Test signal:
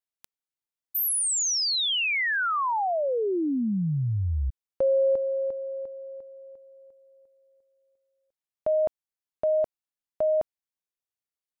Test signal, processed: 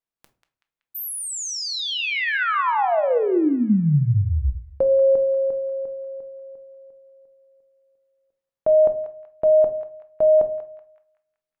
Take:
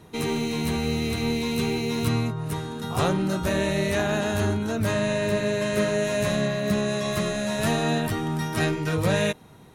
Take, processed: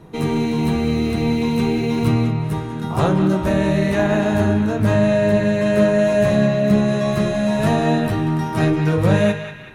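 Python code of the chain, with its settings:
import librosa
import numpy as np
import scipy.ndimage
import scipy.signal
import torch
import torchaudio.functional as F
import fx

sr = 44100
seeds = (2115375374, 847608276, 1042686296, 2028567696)

y = fx.high_shelf(x, sr, hz=2200.0, db=-11.0)
y = fx.echo_banded(y, sr, ms=189, feedback_pct=55, hz=2200.0, wet_db=-7)
y = fx.room_shoebox(y, sr, seeds[0], volume_m3=270.0, walls='furnished', distance_m=0.7)
y = F.gain(torch.from_numpy(y), 6.0).numpy()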